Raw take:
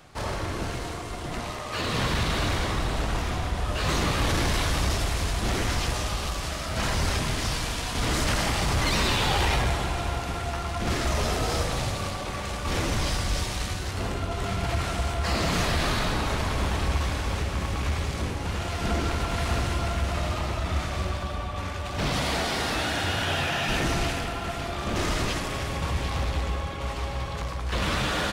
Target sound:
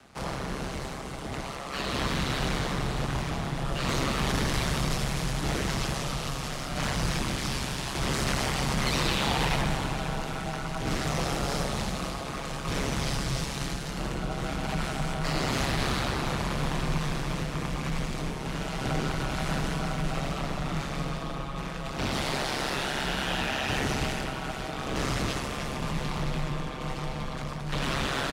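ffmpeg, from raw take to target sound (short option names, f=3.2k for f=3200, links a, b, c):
-filter_complex "[0:a]aeval=exprs='val(0)*sin(2*PI*68*n/s)':c=same,afreqshift=18,asplit=6[a][b][c][d][e][f];[b]adelay=299,afreqshift=150,volume=-16.5dB[g];[c]adelay=598,afreqshift=300,volume=-22dB[h];[d]adelay=897,afreqshift=450,volume=-27.5dB[i];[e]adelay=1196,afreqshift=600,volume=-33dB[j];[f]adelay=1495,afreqshift=750,volume=-38.6dB[k];[a][g][h][i][j][k]amix=inputs=6:normalize=0"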